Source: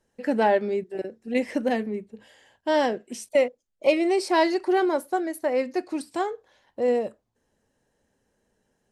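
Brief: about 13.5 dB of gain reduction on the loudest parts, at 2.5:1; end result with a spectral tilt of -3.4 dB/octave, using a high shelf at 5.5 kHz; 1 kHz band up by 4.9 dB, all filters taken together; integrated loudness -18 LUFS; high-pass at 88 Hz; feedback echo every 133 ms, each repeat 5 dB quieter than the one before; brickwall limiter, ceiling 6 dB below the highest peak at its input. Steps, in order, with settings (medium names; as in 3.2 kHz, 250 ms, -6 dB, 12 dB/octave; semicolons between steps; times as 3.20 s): high-pass 88 Hz; peaking EQ 1 kHz +6 dB; treble shelf 5.5 kHz +9 dB; compression 2.5:1, threshold -34 dBFS; peak limiter -25 dBFS; feedback delay 133 ms, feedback 56%, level -5 dB; trim +16.5 dB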